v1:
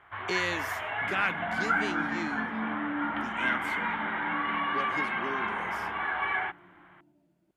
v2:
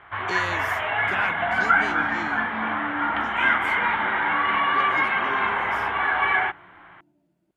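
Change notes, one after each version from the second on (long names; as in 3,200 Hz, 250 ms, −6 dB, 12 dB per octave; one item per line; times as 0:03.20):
first sound +8.5 dB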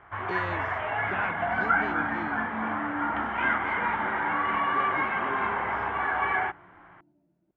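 master: add head-to-tape spacing loss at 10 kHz 37 dB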